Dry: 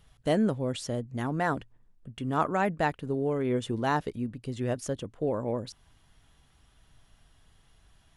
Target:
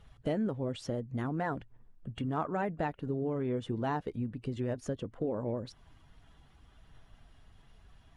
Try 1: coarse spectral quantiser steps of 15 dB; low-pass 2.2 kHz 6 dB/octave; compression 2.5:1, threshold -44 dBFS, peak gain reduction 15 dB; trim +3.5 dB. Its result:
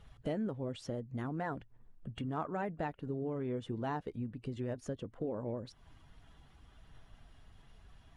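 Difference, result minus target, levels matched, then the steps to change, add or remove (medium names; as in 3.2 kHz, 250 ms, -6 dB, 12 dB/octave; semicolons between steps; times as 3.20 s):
compression: peak gain reduction +4 dB
change: compression 2.5:1, threshold -37 dBFS, peak gain reduction 10.5 dB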